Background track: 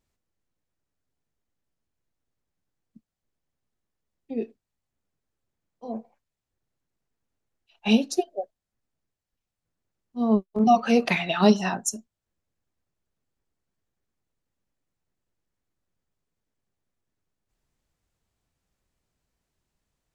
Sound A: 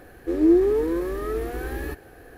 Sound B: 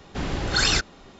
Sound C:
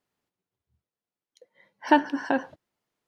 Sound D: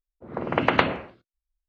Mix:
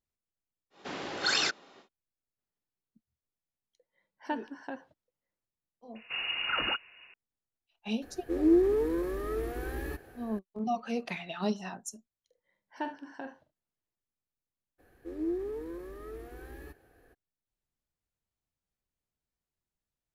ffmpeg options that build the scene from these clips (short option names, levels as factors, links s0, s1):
-filter_complex "[2:a]asplit=2[s0][s1];[3:a]asplit=2[s2][s3];[1:a]asplit=2[s4][s5];[0:a]volume=0.211[s6];[s0]highpass=330,lowpass=6400[s7];[s2]asplit=2[s8][s9];[s9]adelay=1283,volume=0.224,highshelf=f=4000:g=-28.9[s10];[s8][s10]amix=inputs=2:normalize=0[s11];[s1]lowpass=f=2500:t=q:w=0.5098,lowpass=f=2500:t=q:w=0.6013,lowpass=f=2500:t=q:w=0.9,lowpass=f=2500:t=q:w=2.563,afreqshift=-2900[s12];[s3]aecho=1:1:45|74:0.355|0.178[s13];[s7]atrim=end=1.19,asetpts=PTS-STARTPTS,volume=0.531,afade=t=in:d=0.1,afade=t=out:st=1.09:d=0.1,adelay=700[s14];[s11]atrim=end=3.07,asetpts=PTS-STARTPTS,volume=0.168,afade=t=in:d=0.004:c=hsin,afade=t=out:st=3.066:d=0.004:c=hsin,adelay=2380[s15];[s12]atrim=end=1.19,asetpts=PTS-STARTPTS,volume=0.447,afade=t=in:d=0.004:c=hsin,afade=t=out:st=1.186:d=0.004:c=hsin,adelay=5950[s16];[s4]atrim=end=2.37,asetpts=PTS-STARTPTS,volume=0.501,afade=t=in:d=0.004:c=hsin,afade=t=out:st=2.366:d=0.004:c=hsin,adelay=353682S[s17];[s13]atrim=end=3.07,asetpts=PTS-STARTPTS,volume=0.133,afade=t=in:d=0.004:c=hsin,afade=t=out:st=3.066:d=0.004:c=hsin,adelay=10890[s18];[s5]atrim=end=2.37,asetpts=PTS-STARTPTS,volume=0.158,afade=t=in:d=0.02,afade=t=out:st=2.35:d=0.02,adelay=14780[s19];[s6][s14][s15][s16][s17][s18][s19]amix=inputs=7:normalize=0"